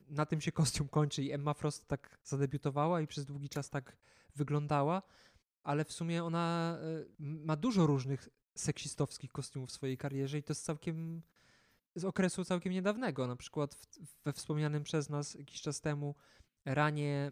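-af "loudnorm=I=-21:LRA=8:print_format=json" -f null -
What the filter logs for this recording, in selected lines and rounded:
"input_i" : "-37.2",
"input_tp" : "-18.3",
"input_lra" : "2.7",
"input_thresh" : "-47.7",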